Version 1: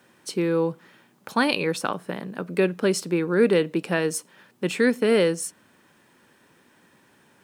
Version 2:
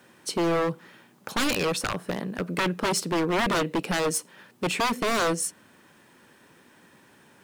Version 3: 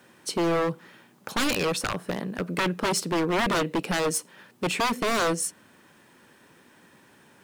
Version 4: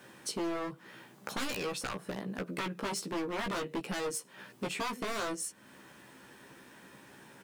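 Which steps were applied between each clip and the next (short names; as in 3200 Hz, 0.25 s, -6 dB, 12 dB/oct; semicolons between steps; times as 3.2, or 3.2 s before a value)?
wavefolder -21.5 dBFS; gain +2.5 dB
nothing audible
compressor 3:1, threshold -39 dBFS, peak gain reduction 12.5 dB; doubler 15 ms -4 dB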